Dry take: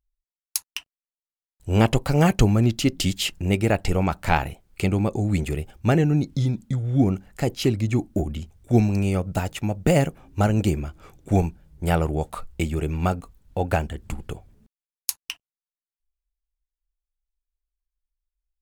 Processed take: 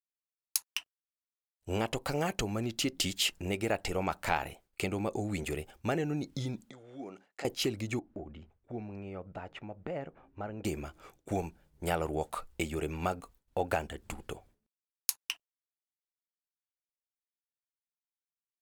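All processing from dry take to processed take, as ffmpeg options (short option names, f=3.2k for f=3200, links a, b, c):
-filter_complex "[0:a]asettb=1/sr,asplit=3[a][b][c];[a]atrim=end=6.704[d];[b]atrim=start=6.7:end=7.45,asetpts=PTS-STARTPTS,afade=t=in:d=0.004:c=qsin,afade=t=out:st=0.746:d=0.004:c=qsin,acompressor=threshold=-31dB:ratio=3:attack=3.2:release=140:knee=1:detection=peak,highpass=300,lowpass=6.4k[e];[c]atrim=start=7.446[f];[d][e]acrossfade=d=0.004:c1=hsin:c2=qsin[g];[g][f]acrossfade=d=0.004:c1=qsin:c2=hsin,asettb=1/sr,asplit=3[h][i][j];[h]atrim=end=7.994[k];[i]atrim=start=7.99:end=10.65,asetpts=PTS-STARTPTS,afade=t=in:d=0.004:c=qsin,afade=t=out:st=2.656:d=0.004:c=qsin,lowpass=1.9k,acompressor=threshold=-38dB:ratio=2:attack=3.2:release=140:knee=1:detection=peak[l];[j]atrim=start=10.646[m];[k][l]acrossfade=d=0.004:c1=hsin:c2=qsin[n];[n][m]acrossfade=d=0.004:c1=qsin:c2=hsin,agate=range=-33dB:threshold=-44dB:ratio=3:detection=peak,acompressor=threshold=-20dB:ratio=6,bass=f=250:g=-11,treble=f=4k:g=0,volume=-3dB"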